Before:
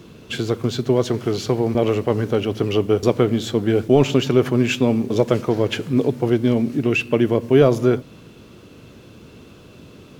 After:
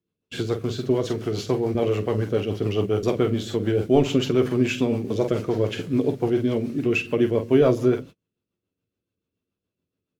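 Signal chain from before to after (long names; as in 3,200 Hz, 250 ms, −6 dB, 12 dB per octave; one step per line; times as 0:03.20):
ambience of single reflections 11 ms −9 dB, 47 ms −8.5 dB
rotating-speaker cabinet horn 7 Hz
noise gate −34 dBFS, range −37 dB
level −3 dB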